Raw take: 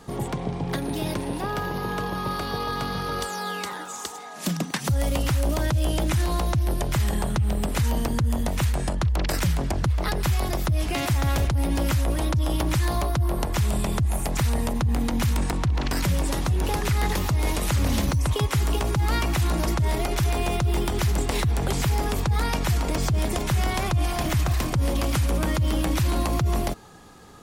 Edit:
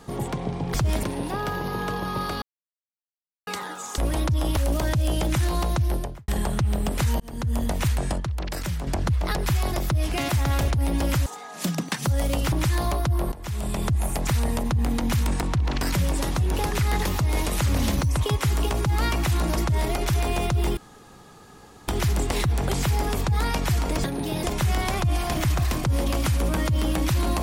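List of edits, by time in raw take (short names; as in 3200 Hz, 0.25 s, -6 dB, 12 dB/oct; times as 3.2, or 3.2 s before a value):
0.74–1.13 swap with 23.03–23.32
2.52–3.57 mute
4.08–5.34 swap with 12.03–12.62
6.65–7.05 studio fade out
7.97–8.35 fade in
8.97–9.64 gain -5.5 dB
13.42–13.98 fade in, from -17 dB
20.87 insert room tone 1.11 s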